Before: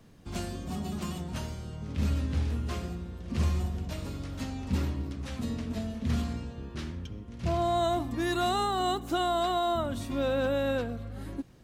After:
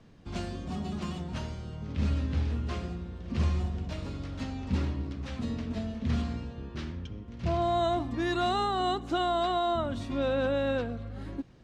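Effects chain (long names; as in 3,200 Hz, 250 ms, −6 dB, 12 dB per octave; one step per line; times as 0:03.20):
low-pass filter 5,200 Hz 12 dB per octave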